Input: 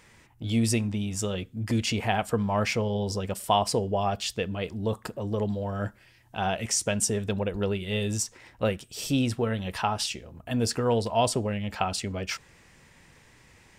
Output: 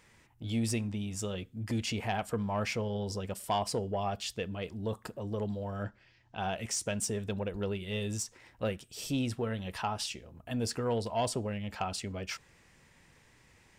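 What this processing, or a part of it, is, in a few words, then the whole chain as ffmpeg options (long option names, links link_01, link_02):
saturation between pre-emphasis and de-emphasis: -filter_complex "[0:a]highshelf=frequency=8100:gain=10.5,asoftclip=type=tanh:threshold=-14.5dB,highshelf=frequency=8100:gain=-10.5,asettb=1/sr,asplit=3[link_01][link_02][link_03];[link_01]atrim=end=5.834[link_04];[link_02]atrim=start=5.83:end=6.4,asetpts=PTS-STARTPTS,afade=type=in:duration=0.004:curve=qsin,afade=type=out:start_time=0.566:duration=0.004:curve=qsin,lowpass=frequency=6000:width=0.5412,lowpass=frequency=6000:width=1.3066[link_05];[link_03]atrim=start=6.396[link_06];[link_04][link_05]acrossfade=duration=0.004:curve1=hsin:curve2=qsin[link_07];[link_07][link_06]acrossfade=duration=0.004:curve1=qsin:curve2=hsin,volume=-6dB"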